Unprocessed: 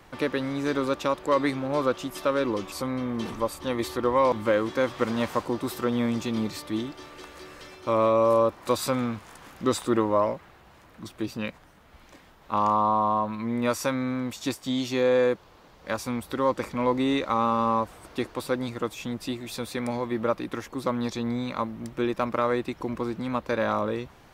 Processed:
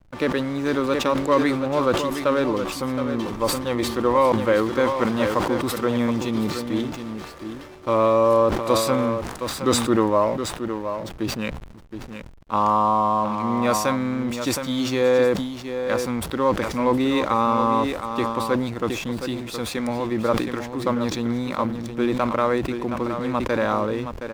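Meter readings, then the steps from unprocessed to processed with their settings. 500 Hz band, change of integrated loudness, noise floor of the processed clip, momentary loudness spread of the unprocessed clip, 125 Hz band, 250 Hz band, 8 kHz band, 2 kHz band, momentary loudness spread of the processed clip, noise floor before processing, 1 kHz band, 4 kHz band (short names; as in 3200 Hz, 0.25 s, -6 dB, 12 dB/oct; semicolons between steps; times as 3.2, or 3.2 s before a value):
+4.5 dB, +4.5 dB, -38 dBFS, 11 LU, +5.5 dB, +5.0 dB, +7.0 dB, +4.5 dB, 10 LU, -54 dBFS, +4.5 dB, +6.0 dB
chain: echo 0.719 s -8.5 dB; backlash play -40 dBFS; sustainer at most 61 dB/s; gain +3.5 dB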